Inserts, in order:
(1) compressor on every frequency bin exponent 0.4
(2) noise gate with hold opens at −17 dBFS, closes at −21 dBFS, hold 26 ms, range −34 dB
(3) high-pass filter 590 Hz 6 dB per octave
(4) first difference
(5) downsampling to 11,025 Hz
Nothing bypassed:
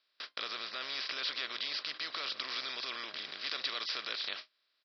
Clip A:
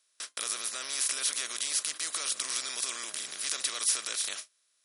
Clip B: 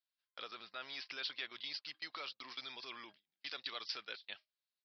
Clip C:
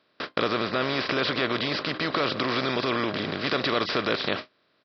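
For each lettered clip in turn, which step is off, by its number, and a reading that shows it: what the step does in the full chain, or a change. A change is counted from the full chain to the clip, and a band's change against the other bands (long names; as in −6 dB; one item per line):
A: 5, change in crest factor +2.5 dB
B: 1, 4 kHz band −2.0 dB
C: 4, 250 Hz band +14.5 dB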